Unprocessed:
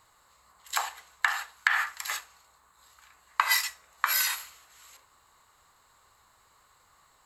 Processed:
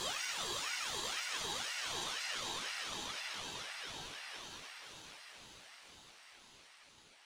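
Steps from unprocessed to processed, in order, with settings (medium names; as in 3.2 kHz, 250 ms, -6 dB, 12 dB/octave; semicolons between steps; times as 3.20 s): pitch bend over the whole clip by +11 st ending unshifted; Doppler pass-by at 2.12 s, 27 m/s, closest 28 m; Paulstretch 22×, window 0.25 s, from 4.17 s; high-pass 1.2 kHz 6 dB/octave; distance through air 100 m; ring modulator with a swept carrier 930 Hz, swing 60%, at 2 Hz; trim +4 dB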